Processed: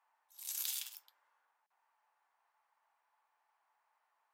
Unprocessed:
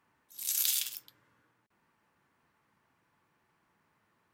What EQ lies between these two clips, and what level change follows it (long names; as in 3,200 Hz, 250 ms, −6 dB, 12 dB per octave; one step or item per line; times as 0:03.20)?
four-pole ladder high-pass 700 Hz, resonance 60%
+1.0 dB